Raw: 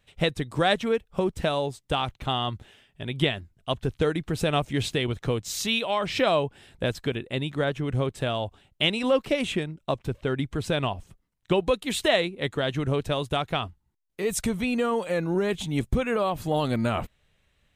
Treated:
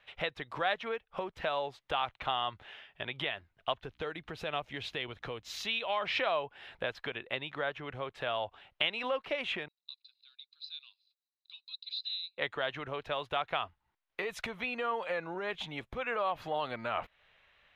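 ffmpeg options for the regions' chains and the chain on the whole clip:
-filter_complex "[0:a]asettb=1/sr,asplit=3[s0][s1][s2];[s0]atrim=end=3.814[s3];[s1]atrim=start=3.81:end=6.05,asetpts=PTS-STARTPTS,afade=t=in:d=0.004:c=qsin,afade=t=out:st=2.236:d=0.004:c=qsin,equalizer=f=1200:w=0.43:g=-5,aeval=exprs='val(0)+0.00158*(sin(2*PI*60*n/s)+sin(2*PI*2*60*n/s)/2+sin(2*PI*3*60*n/s)/3+sin(2*PI*4*60*n/s)/4+sin(2*PI*5*60*n/s)/5)':c=same[s4];[s2]atrim=start=6.046[s5];[s3][s4]acrossfade=d=0.004:c1=hsin:c2=qsin[s6];[s6][s5]acrossfade=d=0.004:c1=qsin:c2=hsin,asettb=1/sr,asplit=3[s7][s8][s9];[s7]atrim=end=9.684[s10];[s8]atrim=start=9.68:end=12.38,asetpts=PTS-STARTPTS,afade=t=in:d=0.004:c=qsin,afade=t=out:st=2.696:d=0.004:c=qsin,asuperpass=centerf=4300:order=4:qfactor=6.4,aecho=1:1:0.8:0.72,atrim=end_sample=119070[s11];[s9]atrim=start=12.376[s12];[s10][s11]acrossfade=d=0.004:c1=hsin:c2=qsin[s13];[s13][s12]acrossfade=d=0.004:c1=qsin:c2=hsin,equalizer=f=8300:t=o:w=0.33:g=-8.5,acompressor=threshold=0.0141:ratio=3,acrossover=split=580 3600:gain=0.112 1 0.0891[s14][s15][s16];[s14][s15][s16]amix=inputs=3:normalize=0,volume=2.66"

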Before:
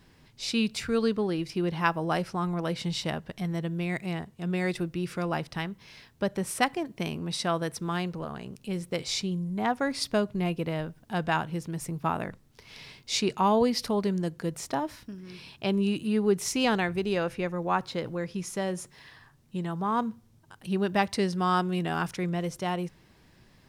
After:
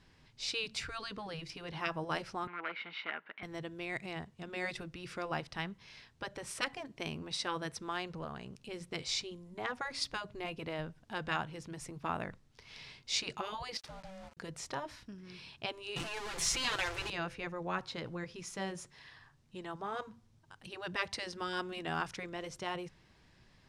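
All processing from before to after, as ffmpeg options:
-filter_complex "[0:a]asettb=1/sr,asplit=3[s0][s1][s2];[s0]atrim=end=2.474[s3];[s1]atrim=start=2.47:end=3.43,asetpts=PTS-STARTPTS,afade=t=in:d=0.004:c=qsin,afade=t=out:st=0.956:d=0.004:c=qsin,bandreject=f=700:w=6.3,aeval=exprs='0.0562*(abs(mod(val(0)/0.0562+3,4)-2)-1)':c=same,highpass=f=320:w=0.5412,highpass=f=320:w=1.3066,equalizer=f=370:t=q:w=4:g=-6,equalizer=f=530:t=q:w=4:g=-9,equalizer=f=1400:t=q:w=4:g=10,equalizer=f=2200:t=q:w=4:g=8,lowpass=f=2900:w=0.5412,lowpass=f=2900:w=1.3066[s4];[s2]atrim=start=3.426[s5];[s3][s4]acrossfade=d=0.004:c1=hsin:c2=qsin[s6];[s6][s5]acrossfade=d=0.004:c1=qsin:c2=hsin,asettb=1/sr,asplit=3[s7][s8][s9];[s7]atrim=end=13.774[s10];[s8]atrim=start=13.77:end=14.37,asetpts=PTS-STARTPTS,afade=t=in:d=0.004:c=qsin,afade=t=out:st=0.596:d=0.004:c=qsin,acompressor=threshold=0.0158:ratio=12:attack=3.2:release=140:knee=1:detection=peak,aeval=exprs='val(0)*sin(2*PI*380*n/s)':c=same,aeval=exprs='val(0)*gte(abs(val(0)),0.00473)':c=same[s11];[s9]atrim=start=14.366[s12];[s10][s11]acrossfade=d=0.004:c1=hsin:c2=qsin[s13];[s13][s12]acrossfade=d=0.004:c1=qsin:c2=hsin,asettb=1/sr,asplit=3[s14][s15][s16];[s14]atrim=end=15.964[s17];[s15]atrim=start=15.96:end=17.1,asetpts=PTS-STARTPTS,afade=t=in:d=0.004:c=qsin,afade=t=out:st=1.136:d=0.004:c=qsin,aeval=exprs='val(0)+0.5*0.0355*sgn(val(0))':c=same,asubboost=boost=11.5:cutoff=140,aecho=1:1:5.9:0.89,atrim=end_sample=50274[s18];[s16]atrim=start=17.096[s19];[s17][s18]acrossfade=d=0.004:c1=hsin:c2=qsin[s20];[s20][s19]acrossfade=d=0.004:c1=qsin:c2=hsin,afftfilt=real='re*lt(hypot(re,im),0.251)':imag='im*lt(hypot(re,im),0.251)':win_size=1024:overlap=0.75,lowpass=7300,equalizer=f=280:t=o:w=2.7:g=-4.5,volume=0.668"

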